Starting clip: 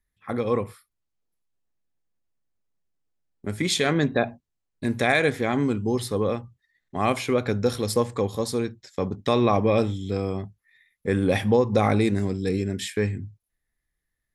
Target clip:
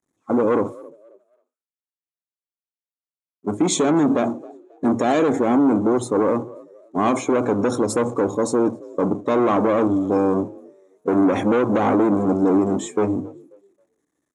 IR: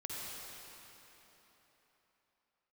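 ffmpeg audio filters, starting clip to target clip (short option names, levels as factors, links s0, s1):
-filter_complex "[0:a]aeval=exprs='val(0)+0.5*0.0282*sgn(val(0))':c=same,agate=range=0.0224:threshold=0.0631:ratio=3:detection=peak,equalizer=f=3300:w=0.32:g=-14.5,asoftclip=type=hard:threshold=0.0501,highpass=260,equalizer=f=300:t=q:w=4:g=10,equalizer=f=1100:t=q:w=4:g=4,equalizer=f=1800:t=q:w=4:g=-5,equalizer=f=2800:t=q:w=4:g=-4,equalizer=f=4800:t=q:w=4:g=-8,equalizer=f=6700:t=q:w=4:g=6,lowpass=f=8600:w=0.5412,lowpass=f=8600:w=1.3066,asplit=2[s0][s1];[s1]asplit=3[s2][s3][s4];[s2]adelay=269,afreqshift=47,volume=0.075[s5];[s3]adelay=538,afreqshift=94,volume=0.0292[s6];[s4]adelay=807,afreqshift=141,volume=0.0114[s7];[s5][s6][s7]amix=inputs=3:normalize=0[s8];[s0][s8]amix=inputs=2:normalize=0,afftdn=nr=13:nf=-50,alimiter=level_in=11.9:limit=0.891:release=50:level=0:latency=1,volume=0.376"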